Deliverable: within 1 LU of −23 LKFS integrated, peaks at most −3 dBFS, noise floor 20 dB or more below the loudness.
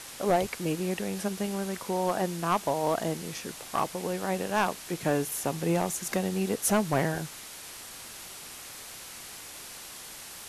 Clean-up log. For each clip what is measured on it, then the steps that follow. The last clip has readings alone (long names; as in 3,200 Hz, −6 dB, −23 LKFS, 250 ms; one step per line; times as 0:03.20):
share of clipped samples 0.3%; peaks flattened at −17.5 dBFS; background noise floor −44 dBFS; target noise floor −50 dBFS; integrated loudness −29.5 LKFS; sample peak −17.5 dBFS; target loudness −23.0 LKFS
→ clipped peaks rebuilt −17.5 dBFS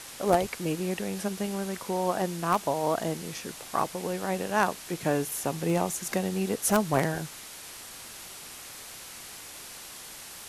share of clipped samples 0.0%; background noise floor −44 dBFS; target noise floor −49 dBFS
→ broadband denoise 6 dB, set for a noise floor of −44 dBFS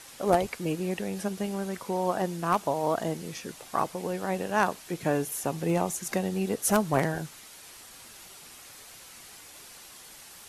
background noise floor −49 dBFS; target noise floor −50 dBFS
→ broadband denoise 6 dB, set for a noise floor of −49 dBFS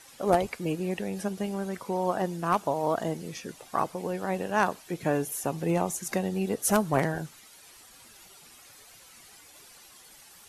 background noise floor −53 dBFS; integrated loudness −29.5 LKFS; sample peak −8.5 dBFS; target loudness −23.0 LKFS
→ level +6.5 dB
brickwall limiter −3 dBFS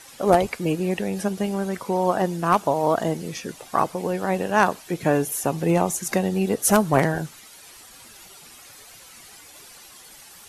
integrated loudness −23.0 LKFS; sample peak −3.0 dBFS; background noise floor −47 dBFS